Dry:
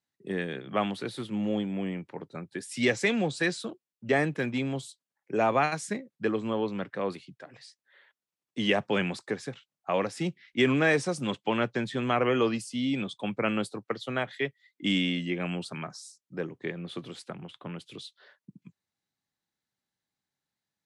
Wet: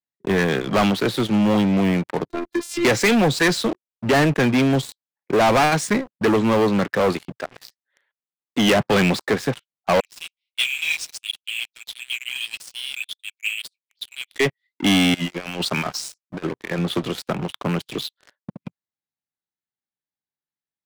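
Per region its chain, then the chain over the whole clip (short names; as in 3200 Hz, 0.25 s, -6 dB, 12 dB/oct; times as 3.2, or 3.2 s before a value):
2.29–2.85 bell 300 Hz +11.5 dB 0.42 oct + compressor 2:1, threshold -37 dBFS + robotiser 344 Hz
10–14.36 steep high-pass 2400 Hz 72 dB/oct + flange 1.5 Hz, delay 1.4 ms, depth 6.8 ms, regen -31% + three-band expander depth 40%
15.14–16.79 low shelf 440 Hz -8 dB + negative-ratio compressor -41 dBFS, ratio -0.5
whole clip: LPF 3800 Hz 6 dB/oct; low shelf 360 Hz -2.5 dB; sample leveller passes 5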